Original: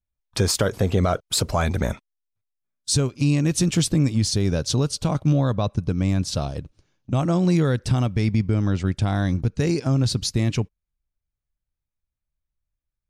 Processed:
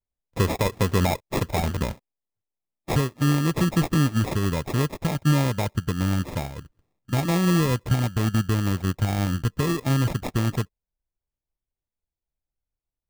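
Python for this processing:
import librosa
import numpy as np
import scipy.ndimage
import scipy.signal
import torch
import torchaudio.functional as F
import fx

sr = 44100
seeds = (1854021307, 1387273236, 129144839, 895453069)

y = fx.sample_hold(x, sr, seeds[0], rate_hz=1500.0, jitter_pct=0)
y = fx.upward_expand(y, sr, threshold_db=-28.0, expansion=1.5)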